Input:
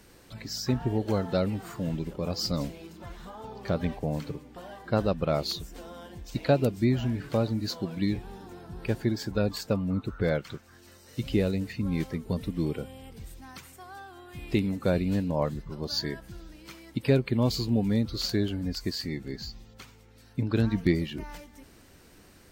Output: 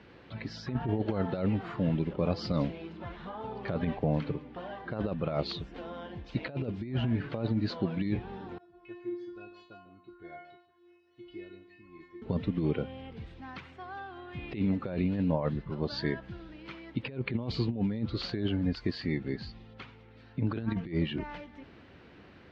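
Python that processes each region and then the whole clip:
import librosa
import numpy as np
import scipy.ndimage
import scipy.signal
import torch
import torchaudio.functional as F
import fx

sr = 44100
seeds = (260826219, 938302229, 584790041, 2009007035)

y = fx.chain(x, sr, fx.stiff_resonator(f0_hz=350.0, decay_s=0.5, stiffness=0.002),
    fx.echo_single(ms=148, db=-12.5), at=(8.58, 12.22))
y = scipy.signal.sosfilt(scipy.signal.butter(4, 3400.0, 'lowpass', fs=sr, output='sos'), y)
y = fx.over_compress(y, sr, threshold_db=-28.0, ratio=-0.5)
y = scipy.signal.sosfilt(scipy.signal.butter(2, 73.0, 'highpass', fs=sr, output='sos'), y)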